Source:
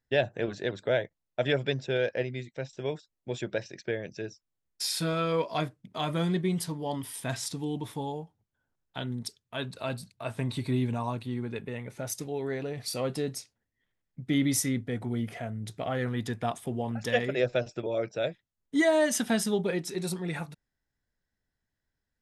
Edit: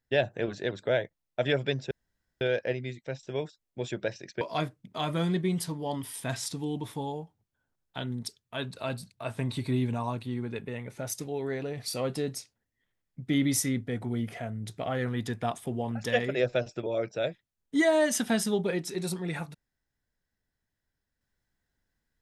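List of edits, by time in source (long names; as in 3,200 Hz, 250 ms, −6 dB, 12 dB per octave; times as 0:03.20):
0:01.91: splice in room tone 0.50 s
0:03.91–0:05.41: remove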